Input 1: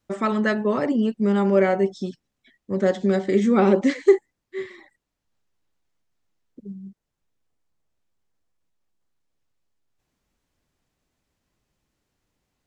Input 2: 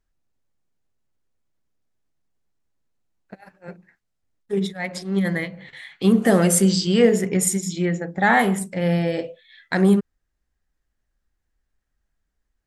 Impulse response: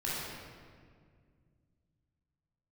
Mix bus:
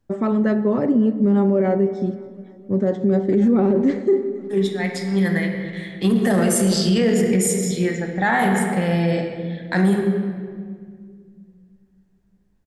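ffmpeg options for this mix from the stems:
-filter_complex "[0:a]tiltshelf=f=970:g=9,volume=-3dB,asplit=3[a][b][c];[b]volume=-19dB[d];[c]volume=-22dB[e];[1:a]volume=-1dB,asplit=2[f][g];[g]volume=-7.5dB[h];[2:a]atrim=start_sample=2205[i];[d][h]amix=inputs=2:normalize=0[j];[j][i]afir=irnorm=-1:irlink=0[k];[e]aecho=0:1:273|546|819|1092|1365|1638|1911|2184|2457:1|0.57|0.325|0.185|0.106|0.0602|0.0343|0.0195|0.0111[l];[a][f][k][l]amix=inputs=4:normalize=0,alimiter=limit=-10dB:level=0:latency=1:release=15"

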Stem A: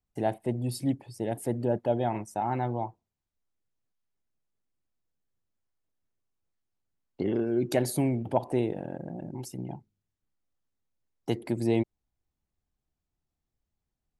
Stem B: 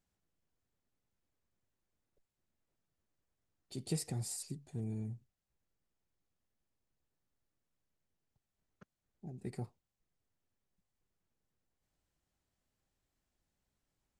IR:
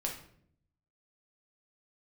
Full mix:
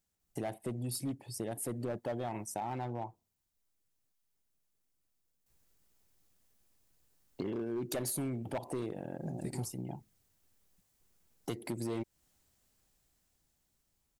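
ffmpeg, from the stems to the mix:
-filter_complex "[0:a]adelay=200,volume=0.5dB[a];[1:a]dynaudnorm=f=640:g=7:m=12dB,volume=-3dB,asplit=3[b][c][d];[b]atrim=end=2.53,asetpts=PTS-STARTPTS,afade=t=out:st=2.526:d=0.004:c=hsin[e];[c]atrim=start=2.53:end=5.46,asetpts=PTS-STARTPTS,volume=0[f];[d]atrim=start=5.46,asetpts=PTS-STARTPTS,afade=t=in:d=0.004:c=hsin[g];[e][f][g]concat=n=3:v=0:a=1[h];[a][h]amix=inputs=2:normalize=0,highshelf=f=5.1k:g=11,volume=22dB,asoftclip=hard,volume=-22dB,acompressor=threshold=-37dB:ratio=3"

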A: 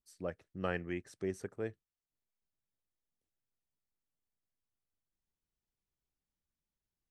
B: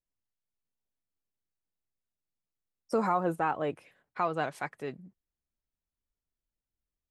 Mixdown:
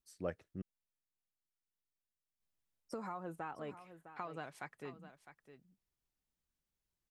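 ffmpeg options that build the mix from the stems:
-filter_complex "[0:a]volume=0dB,asplit=3[a][b][c];[a]atrim=end=0.62,asetpts=PTS-STARTPTS,afade=t=out:st=0.616:d=0.004:c=hsin[d];[b]atrim=start=0.62:end=2.4,asetpts=PTS-STARTPTS,volume=0[e];[c]atrim=start=2.4,asetpts=PTS-STARTPTS,afade=t=in:d=0.004:c=hsin[f];[d][e][f]concat=n=3:v=0:a=1[g];[1:a]equalizer=f=560:t=o:w=1.5:g=-3,acompressor=threshold=-33dB:ratio=4,volume=-7.5dB,asplit=2[h][i];[i]volume=-12.5dB,aecho=0:1:657:1[j];[g][h][j]amix=inputs=3:normalize=0"

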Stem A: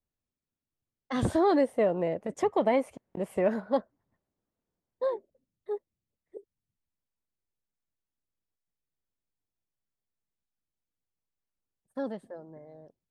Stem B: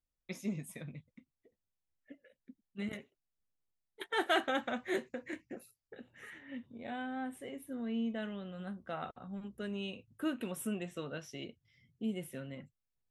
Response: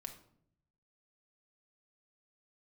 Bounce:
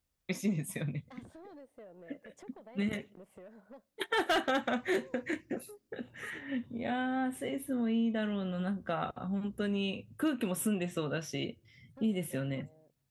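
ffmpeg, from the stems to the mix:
-filter_complex "[0:a]acompressor=threshold=-34dB:ratio=16,asoftclip=type=tanh:threshold=-32dB,volume=-13dB,asplit=2[a][b];[b]volume=-18.5dB[c];[1:a]highpass=69,lowshelf=f=100:g=8,acontrast=57,volume=2dB,asplit=2[d][e];[e]volume=-20dB[f];[2:a]atrim=start_sample=2205[g];[c][f]amix=inputs=2:normalize=0[h];[h][g]afir=irnorm=-1:irlink=0[i];[a][d][i]amix=inputs=3:normalize=0,asoftclip=type=hard:threshold=-17dB,acompressor=threshold=-31dB:ratio=2"

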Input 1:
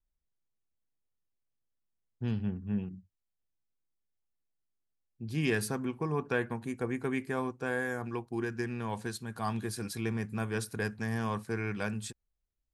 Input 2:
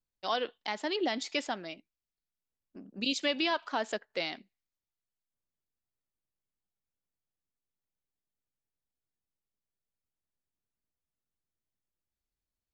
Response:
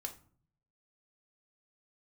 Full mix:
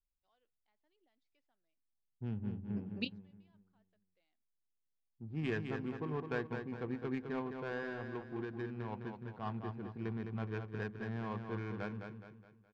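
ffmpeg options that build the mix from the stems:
-filter_complex "[0:a]adynamicsmooth=sensitivity=4:basefreq=580,volume=-7dB,asplit=3[a][b][c];[b]volume=-6.5dB[d];[1:a]volume=-1.5dB[e];[c]apad=whole_len=561523[f];[e][f]sidechaingate=range=-46dB:threshold=-60dB:ratio=16:detection=peak[g];[d]aecho=0:1:209|418|627|836|1045|1254:1|0.41|0.168|0.0689|0.0283|0.0116[h];[a][g][h]amix=inputs=3:normalize=0,lowpass=3.7k"

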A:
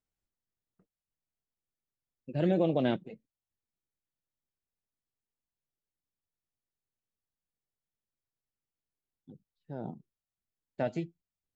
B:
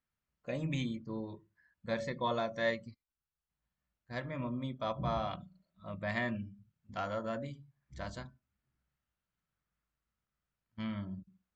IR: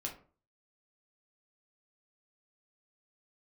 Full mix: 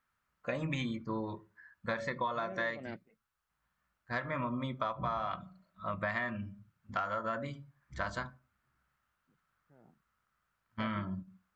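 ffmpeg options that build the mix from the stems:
-filter_complex "[0:a]lowpass=f=2k:t=q:w=3.9,volume=-13dB[a];[1:a]equalizer=f=1.3k:w=0.99:g=13,volume=2dB,asplit=3[b][c][d];[c]volume=-15.5dB[e];[d]apad=whole_len=509412[f];[a][f]sidechaingate=range=-11dB:threshold=-57dB:ratio=16:detection=peak[g];[2:a]atrim=start_sample=2205[h];[e][h]afir=irnorm=-1:irlink=0[i];[g][b][i]amix=inputs=3:normalize=0,acompressor=threshold=-31dB:ratio=12"

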